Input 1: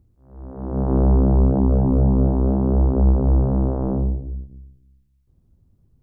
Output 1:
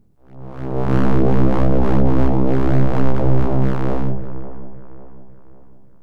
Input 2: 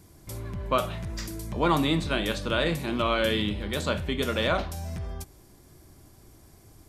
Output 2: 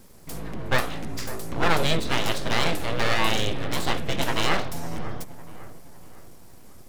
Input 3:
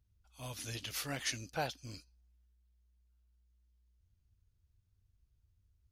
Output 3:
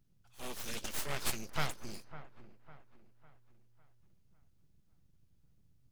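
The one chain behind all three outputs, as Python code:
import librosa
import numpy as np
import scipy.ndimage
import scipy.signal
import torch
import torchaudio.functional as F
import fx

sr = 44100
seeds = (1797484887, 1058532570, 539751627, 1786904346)

y = np.abs(x)
y = fx.echo_wet_lowpass(y, sr, ms=553, feedback_pct=42, hz=1600.0, wet_db=-13.5)
y = y * 10.0 ** (4.5 / 20.0)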